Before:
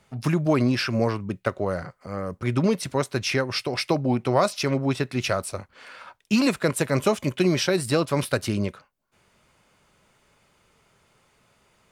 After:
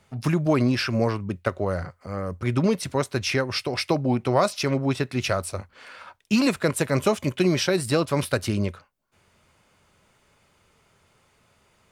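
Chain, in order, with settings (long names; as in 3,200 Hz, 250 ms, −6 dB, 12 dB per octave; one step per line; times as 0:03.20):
parametric band 87 Hz +8 dB 0.27 octaves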